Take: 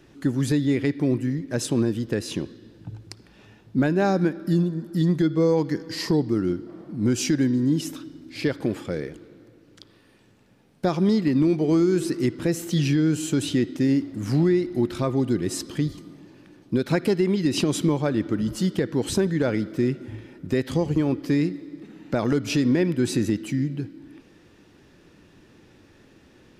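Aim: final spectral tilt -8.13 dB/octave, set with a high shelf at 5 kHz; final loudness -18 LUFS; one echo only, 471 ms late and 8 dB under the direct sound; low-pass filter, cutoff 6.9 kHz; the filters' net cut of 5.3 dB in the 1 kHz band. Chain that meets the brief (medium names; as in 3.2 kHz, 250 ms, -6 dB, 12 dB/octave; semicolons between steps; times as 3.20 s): low-pass 6.9 kHz; peaking EQ 1 kHz -7.5 dB; treble shelf 5 kHz -3.5 dB; delay 471 ms -8 dB; trim +6 dB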